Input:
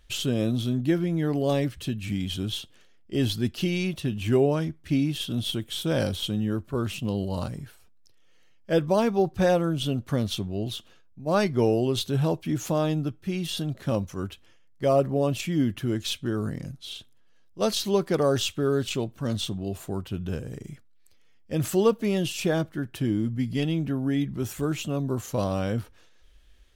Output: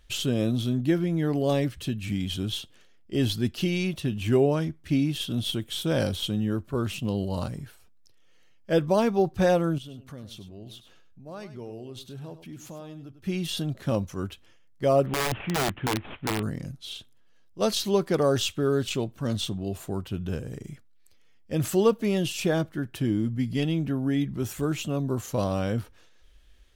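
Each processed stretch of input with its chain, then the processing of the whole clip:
0:09.78–0:13.24: downward compressor 2 to 1, threshold −51 dBFS + single-tap delay 100 ms −12 dB
0:15.06–0:16.43: variable-slope delta modulation 16 kbit/s + wrap-around overflow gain 20.5 dB
whole clip: no processing

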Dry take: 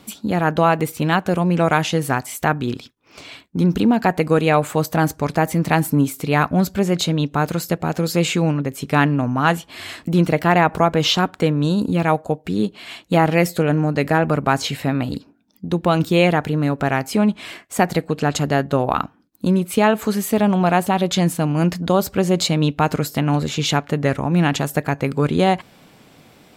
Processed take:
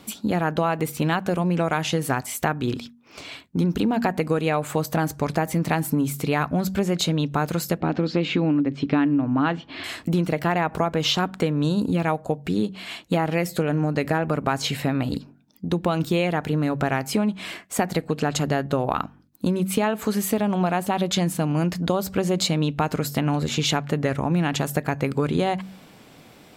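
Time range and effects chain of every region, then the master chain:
0:07.80–0:09.84: low-pass filter 4,300 Hz 24 dB per octave + parametric band 290 Hz +12.5 dB 0.32 octaves
whole clip: hum removal 47.5 Hz, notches 5; downward compressor, threshold −18 dBFS

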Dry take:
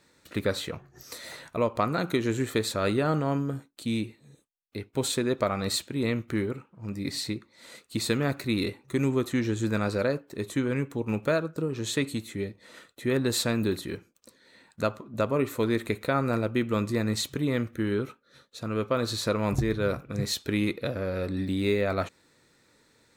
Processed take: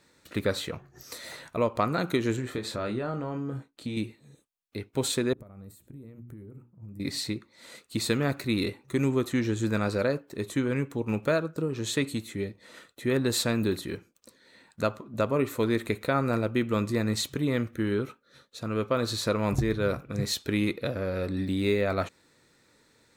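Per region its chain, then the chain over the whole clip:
0:02.36–0:03.97: low-pass filter 3,100 Hz 6 dB per octave + downward compressor 5 to 1, threshold −28 dBFS + double-tracking delay 24 ms −7 dB
0:05.33–0:07.00: mains-hum notches 60/120/180/240/300/360/420 Hz + downward compressor 8 to 1, threshold −37 dBFS + drawn EQ curve 120 Hz 0 dB, 4,600 Hz −25 dB, 12,000 Hz −2 dB
whole clip: no processing

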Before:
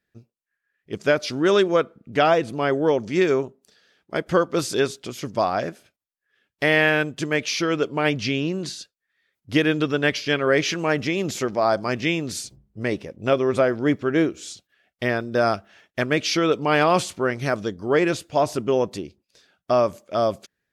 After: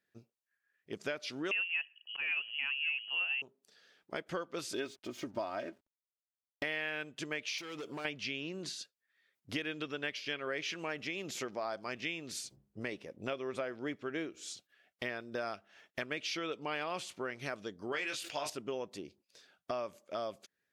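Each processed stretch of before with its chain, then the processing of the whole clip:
0:01.51–0:03.42: voice inversion scrambler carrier 3,100 Hz + volume swells 206 ms
0:04.73–0:06.64: spectral tilt −1.5 dB per octave + comb filter 3.2 ms, depth 66% + slack as between gear wheels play −41 dBFS
0:07.58–0:08.05: high-shelf EQ 4,100 Hz +10 dB + downward compressor, threshold −25 dBFS + hard clipping −28.5 dBFS
0:17.92–0:18.50: tilt shelving filter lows −7 dB, about 870 Hz + double-tracking delay 21 ms −6.5 dB + level that may fall only so fast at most 81 dB per second
whole clip: high-pass filter 260 Hz 6 dB per octave; dynamic equaliser 2,700 Hz, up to +7 dB, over −39 dBFS, Q 1.1; downward compressor 3 to 1, threshold −36 dBFS; level −4 dB

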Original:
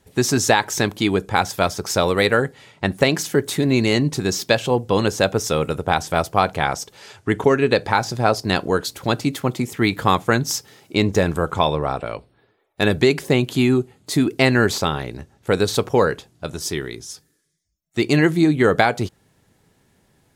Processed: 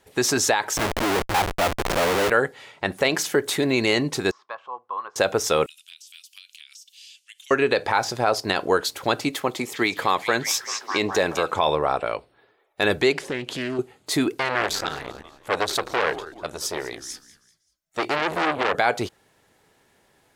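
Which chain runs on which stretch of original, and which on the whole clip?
0:00.77–0:02.30: de-essing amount 80% + low-shelf EQ 140 Hz +5 dB + comparator with hysteresis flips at −31 dBFS
0:04.31–0:05.16: resonant band-pass 1,100 Hz, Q 10 + high-frequency loss of the air 54 metres
0:05.66–0:07.51: elliptic high-pass filter 2,800 Hz, stop band 80 dB + downward compressor 16 to 1, threshold −42 dBFS
0:09.29–0:11.56: high-pass filter 180 Hz 6 dB per octave + notch filter 1,400 Hz, Q 14 + echo through a band-pass that steps 205 ms, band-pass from 5,300 Hz, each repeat −0.7 octaves, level −5.5 dB
0:13.12–0:13.79: low-pass filter 9,300 Hz + downward compressor 3 to 1, threshold −25 dBFS + highs frequency-modulated by the lows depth 0.29 ms
0:14.31–0:18.75: echo with shifted repeats 193 ms, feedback 37%, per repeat −74 Hz, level −18 dB + saturating transformer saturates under 2,700 Hz
whole clip: parametric band 200 Hz −3.5 dB 2.1 octaves; brickwall limiter −11 dBFS; bass and treble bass −11 dB, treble −4 dB; level +3.5 dB

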